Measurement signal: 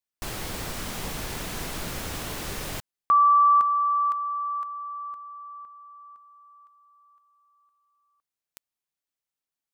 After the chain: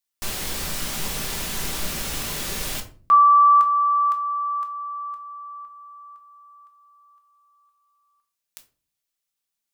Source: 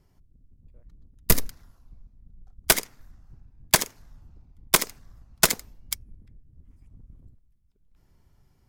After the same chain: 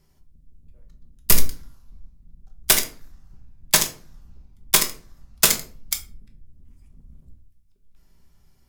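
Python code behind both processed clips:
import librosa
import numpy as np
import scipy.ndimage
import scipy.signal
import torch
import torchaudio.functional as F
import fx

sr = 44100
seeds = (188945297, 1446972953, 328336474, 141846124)

y = fx.high_shelf(x, sr, hz=2000.0, db=9.0)
y = np.clip(10.0 ** (6.0 / 20.0) * y, -1.0, 1.0) / 10.0 ** (6.0 / 20.0)
y = fx.room_shoebox(y, sr, seeds[0], volume_m3=270.0, walls='furnished', distance_m=1.2)
y = y * librosa.db_to_amplitude(-2.0)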